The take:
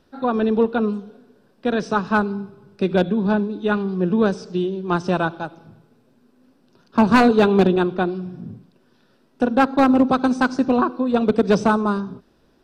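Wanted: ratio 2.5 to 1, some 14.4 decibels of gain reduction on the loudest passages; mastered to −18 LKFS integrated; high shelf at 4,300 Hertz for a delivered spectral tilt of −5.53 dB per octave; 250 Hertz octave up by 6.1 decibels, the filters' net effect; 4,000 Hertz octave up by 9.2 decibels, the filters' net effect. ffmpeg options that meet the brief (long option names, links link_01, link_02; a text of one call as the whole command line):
ffmpeg -i in.wav -af "equalizer=frequency=250:width_type=o:gain=7,equalizer=frequency=4000:width_type=o:gain=8.5,highshelf=frequency=4300:gain=4.5,acompressor=threshold=-28dB:ratio=2.5,volume=9dB" out.wav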